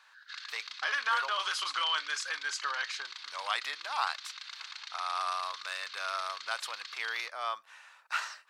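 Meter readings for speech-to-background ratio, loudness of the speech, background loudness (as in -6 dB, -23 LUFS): 8.5 dB, -34.5 LUFS, -43.0 LUFS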